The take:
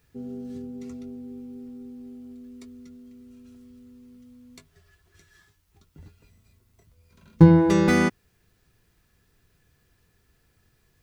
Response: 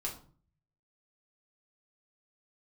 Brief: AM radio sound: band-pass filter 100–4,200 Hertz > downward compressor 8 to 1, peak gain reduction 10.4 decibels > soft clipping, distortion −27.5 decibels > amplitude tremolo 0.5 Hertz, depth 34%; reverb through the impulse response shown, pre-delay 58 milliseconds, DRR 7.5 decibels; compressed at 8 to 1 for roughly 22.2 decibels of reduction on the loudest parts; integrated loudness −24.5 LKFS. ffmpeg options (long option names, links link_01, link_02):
-filter_complex "[0:a]acompressor=threshold=-31dB:ratio=8,asplit=2[link_01][link_02];[1:a]atrim=start_sample=2205,adelay=58[link_03];[link_02][link_03]afir=irnorm=-1:irlink=0,volume=-8.5dB[link_04];[link_01][link_04]amix=inputs=2:normalize=0,highpass=100,lowpass=4200,acompressor=threshold=-36dB:ratio=8,asoftclip=threshold=-26dB,tremolo=f=0.5:d=0.34,volume=20dB"